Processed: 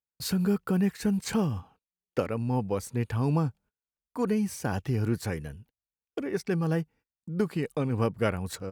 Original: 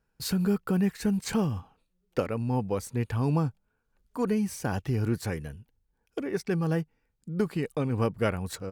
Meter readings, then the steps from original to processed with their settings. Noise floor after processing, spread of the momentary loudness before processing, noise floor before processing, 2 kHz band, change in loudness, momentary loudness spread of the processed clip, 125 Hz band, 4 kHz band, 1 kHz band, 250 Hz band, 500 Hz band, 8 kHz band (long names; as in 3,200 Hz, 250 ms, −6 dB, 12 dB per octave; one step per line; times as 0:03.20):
below −85 dBFS, 10 LU, −76 dBFS, 0.0 dB, 0.0 dB, 10 LU, 0.0 dB, 0.0 dB, 0.0 dB, 0.0 dB, 0.0 dB, 0.0 dB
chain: high-pass filter 45 Hz 12 dB per octave
noise gate −54 dBFS, range −27 dB